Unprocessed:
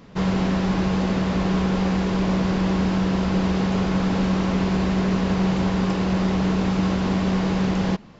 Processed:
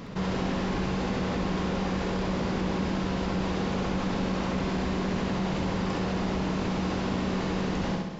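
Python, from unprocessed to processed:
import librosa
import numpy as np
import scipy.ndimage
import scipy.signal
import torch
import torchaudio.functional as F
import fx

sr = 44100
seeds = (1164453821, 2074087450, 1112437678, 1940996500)

p1 = x + fx.echo_feedback(x, sr, ms=66, feedback_pct=39, wet_db=-4, dry=0)
p2 = fx.env_flatten(p1, sr, amount_pct=50)
y = p2 * librosa.db_to_amplitude(-7.5)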